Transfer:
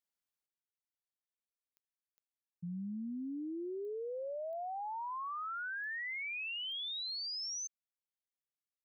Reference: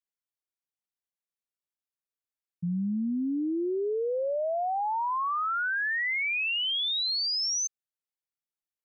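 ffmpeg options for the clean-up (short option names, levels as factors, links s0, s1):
-af "adeclick=t=4,asetnsamples=n=441:p=0,asendcmd='0.46 volume volume 11.5dB',volume=1"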